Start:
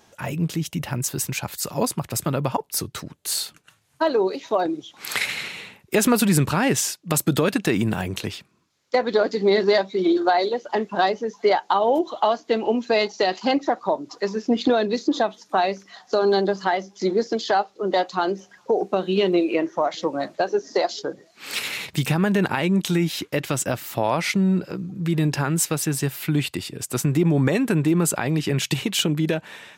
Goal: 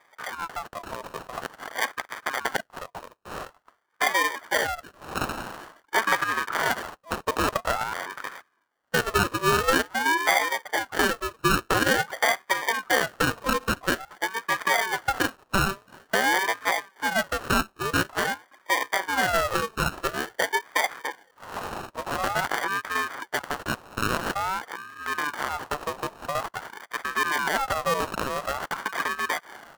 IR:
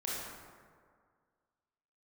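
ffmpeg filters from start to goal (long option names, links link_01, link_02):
-af "highpass=270,lowpass=4000,acrusher=samples=33:mix=1:aa=0.000001,aeval=exprs='val(0)*sin(2*PI*1100*n/s+1100*0.3/0.48*sin(2*PI*0.48*n/s))':channel_layout=same"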